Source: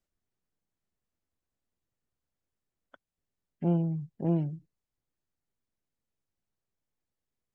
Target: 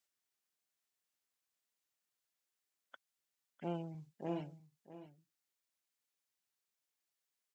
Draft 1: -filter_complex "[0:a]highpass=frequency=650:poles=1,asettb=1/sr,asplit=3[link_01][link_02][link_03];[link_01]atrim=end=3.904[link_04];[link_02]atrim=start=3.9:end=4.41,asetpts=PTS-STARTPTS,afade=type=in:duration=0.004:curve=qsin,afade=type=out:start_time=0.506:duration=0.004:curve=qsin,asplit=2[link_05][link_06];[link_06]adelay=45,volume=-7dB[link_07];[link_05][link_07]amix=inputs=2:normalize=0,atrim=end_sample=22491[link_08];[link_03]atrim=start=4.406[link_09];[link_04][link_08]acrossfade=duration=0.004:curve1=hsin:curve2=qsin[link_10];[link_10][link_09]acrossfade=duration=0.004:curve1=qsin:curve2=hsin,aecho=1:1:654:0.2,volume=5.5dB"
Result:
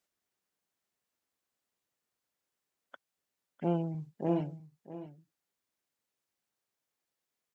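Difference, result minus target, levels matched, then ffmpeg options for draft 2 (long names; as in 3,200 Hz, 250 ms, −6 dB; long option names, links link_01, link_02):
2,000 Hz band −6.0 dB
-filter_complex "[0:a]highpass=frequency=2300:poles=1,asettb=1/sr,asplit=3[link_01][link_02][link_03];[link_01]atrim=end=3.904[link_04];[link_02]atrim=start=3.9:end=4.41,asetpts=PTS-STARTPTS,afade=type=in:duration=0.004:curve=qsin,afade=type=out:start_time=0.506:duration=0.004:curve=qsin,asplit=2[link_05][link_06];[link_06]adelay=45,volume=-7dB[link_07];[link_05][link_07]amix=inputs=2:normalize=0,atrim=end_sample=22491[link_08];[link_03]atrim=start=4.406[link_09];[link_04][link_08]acrossfade=duration=0.004:curve1=hsin:curve2=qsin[link_10];[link_10][link_09]acrossfade=duration=0.004:curve1=qsin:curve2=hsin,aecho=1:1:654:0.2,volume=5.5dB"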